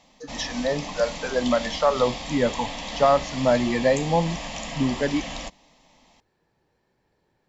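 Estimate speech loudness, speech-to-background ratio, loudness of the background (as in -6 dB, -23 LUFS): -24.5 LUFS, 8.5 dB, -33.0 LUFS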